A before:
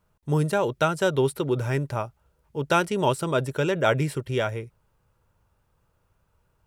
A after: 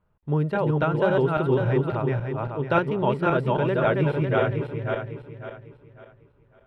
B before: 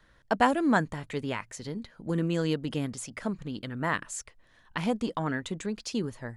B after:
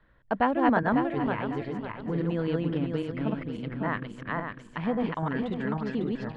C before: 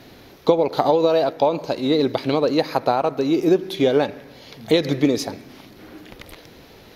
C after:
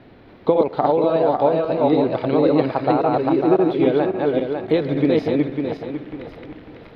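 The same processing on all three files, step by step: backward echo that repeats 275 ms, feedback 56%, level -1 dB; distance through air 430 m

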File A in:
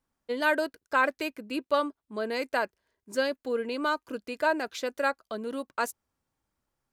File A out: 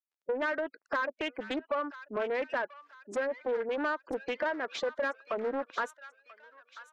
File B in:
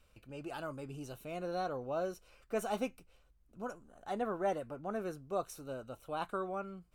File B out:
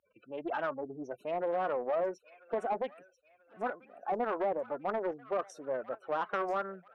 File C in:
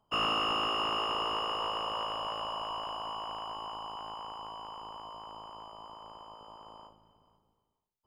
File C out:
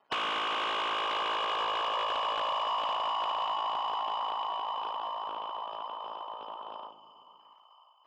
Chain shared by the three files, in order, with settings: companding laws mixed up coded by A; spectral gate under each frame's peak -15 dB strong; dynamic bell 740 Hz, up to -6 dB, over -47 dBFS, Q 3.7; compression 16:1, threshold -39 dBFS; overdrive pedal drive 20 dB, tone 1.6 kHz, clips at -25 dBFS; band-pass 210–7300 Hz; on a send: feedback echo behind a high-pass 988 ms, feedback 43%, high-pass 1.4 kHz, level -12 dB; on the sum: loudspeaker Doppler distortion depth 0.33 ms; trim +5 dB

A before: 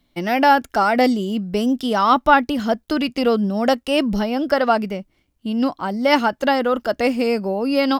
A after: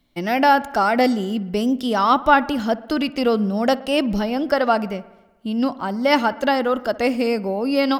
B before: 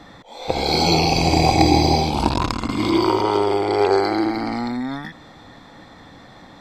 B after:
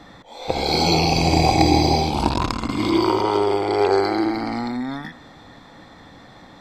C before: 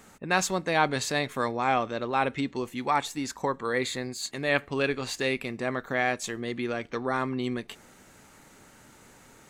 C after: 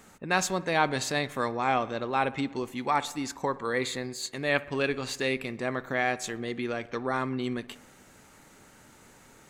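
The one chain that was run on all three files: feedback echo behind a low-pass 61 ms, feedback 68%, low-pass 2.4 kHz, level -19 dB; trim -1 dB

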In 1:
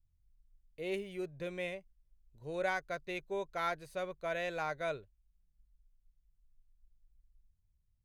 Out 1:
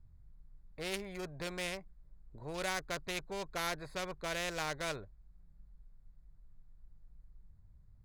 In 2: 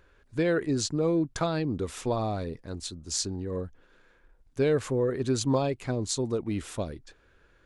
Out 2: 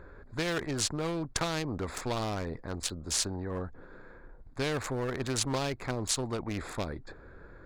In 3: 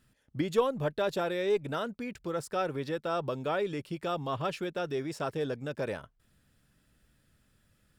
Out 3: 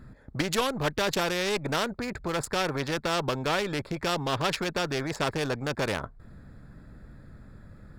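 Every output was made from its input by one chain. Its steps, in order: local Wiener filter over 15 samples; bass shelf 120 Hz +7 dB; spectrum-flattening compressor 2:1; trim +2 dB

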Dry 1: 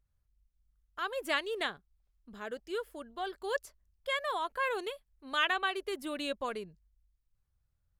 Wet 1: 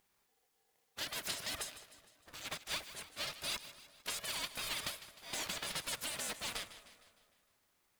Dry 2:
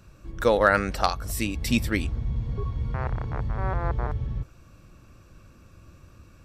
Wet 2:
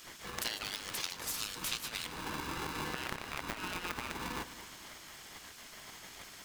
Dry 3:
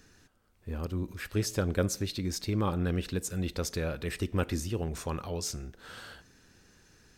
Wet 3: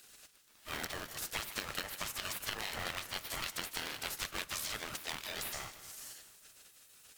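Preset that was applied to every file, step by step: spectral gate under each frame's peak -25 dB weak; dynamic bell 3.5 kHz, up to +6 dB, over -49 dBFS, Q 2.1; compression 10:1, threshold -50 dBFS; two-band feedback delay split 1.1 kHz, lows 219 ms, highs 153 ms, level -14 dB; polarity switched at an audio rate 620 Hz; trim +15 dB

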